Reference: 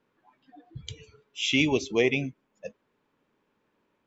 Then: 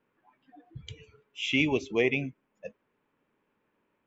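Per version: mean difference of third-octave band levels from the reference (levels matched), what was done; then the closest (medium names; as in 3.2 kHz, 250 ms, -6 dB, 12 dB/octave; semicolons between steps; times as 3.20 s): 1.0 dB: resonant high shelf 3.3 kHz -6 dB, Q 1.5; trim -2.5 dB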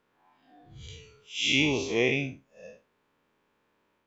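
4.5 dB: spectral blur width 139 ms; peaking EQ 230 Hz -5 dB 2.3 oct; trim +4.5 dB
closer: first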